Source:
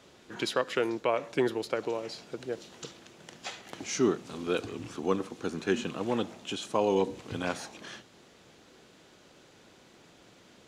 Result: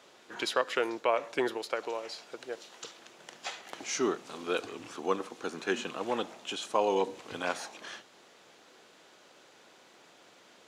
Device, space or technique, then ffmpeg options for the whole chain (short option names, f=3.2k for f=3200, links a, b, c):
filter by subtraction: -filter_complex "[0:a]asettb=1/sr,asplit=3[a][b][c];[a]atrim=end=1.574[d];[b]atrim=start=1.57:end=2.99,asetpts=PTS-STARTPTS,afade=t=in:d=0.004:c=qsin,afade=t=out:st=1.416:d=0.004:c=qsin,lowshelf=f=380:g=-6[e];[c]atrim=start=2.986[f];[d][e]acrossfade=d=0.004:c1=hsin:c2=qsin[g];[g][f]acrossfade=d=0.004:c1=qsin:c2=hsin,asplit=2[h][i];[i]lowpass=810,volume=-1[j];[h][j]amix=inputs=2:normalize=0"